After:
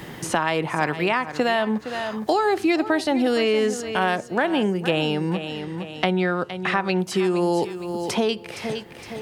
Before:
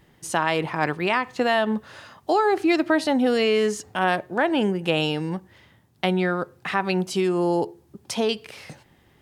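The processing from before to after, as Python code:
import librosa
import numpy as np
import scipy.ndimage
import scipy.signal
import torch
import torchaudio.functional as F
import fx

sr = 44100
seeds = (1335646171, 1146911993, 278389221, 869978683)

y = fx.lowpass(x, sr, hz=8500.0, slope=12, at=(5.34, 6.99))
y = fx.echo_feedback(y, sr, ms=463, feedback_pct=23, wet_db=-14)
y = fx.band_squash(y, sr, depth_pct=70)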